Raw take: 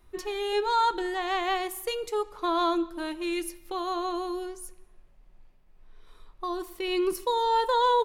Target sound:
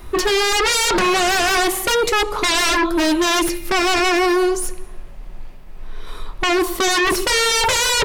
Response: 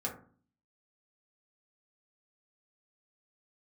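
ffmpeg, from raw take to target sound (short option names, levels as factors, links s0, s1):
-filter_complex "[0:a]aeval=exprs='0.211*sin(PI/2*8.91*val(0)/0.211)':c=same,acrossover=split=8000[s0][s1];[s1]acompressor=threshold=0.0398:ratio=4:attack=1:release=60[s2];[s0][s2]amix=inputs=2:normalize=0"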